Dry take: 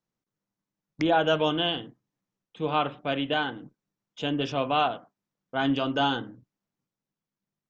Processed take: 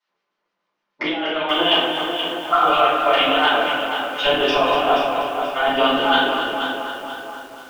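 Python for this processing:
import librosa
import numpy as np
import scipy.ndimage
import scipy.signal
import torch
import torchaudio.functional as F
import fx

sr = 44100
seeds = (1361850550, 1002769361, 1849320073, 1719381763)

p1 = scipy.signal.sosfilt(scipy.signal.bessel(6, 180.0, 'highpass', norm='mag', fs=sr, output='sos'), x)
p2 = fx.spec_repair(p1, sr, seeds[0], start_s=2.54, length_s=0.25, low_hz=640.0, high_hz=1600.0, source='after')
p3 = scipy.signal.sosfilt(scipy.signal.butter(2, 4700.0, 'lowpass', fs=sr, output='sos'), p2)
p4 = fx.low_shelf(p3, sr, hz=280.0, db=-9.0)
p5 = fx.over_compress(p4, sr, threshold_db=-30.0, ratio=-0.5)
p6 = fx.filter_lfo_bandpass(p5, sr, shape='square', hz=6.7, low_hz=860.0, high_hz=2700.0, q=0.78)
p7 = p6 + fx.echo_tape(p6, sr, ms=243, feedback_pct=71, wet_db=-6.0, lp_hz=3400.0, drive_db=23.0, wow_cents=32, dry=0)
p8 = fx.room_shoebox(p7, sr, seeds[1], volume_m3=150.0, walls='mixed', distance_m=4.8)
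p9 = fx.echo_crushed(p8, sr, ms=480, feedback_pct=35, bits=7, wet_db=-8)
y = p9 * librosa.db_to_amplitude(2.5)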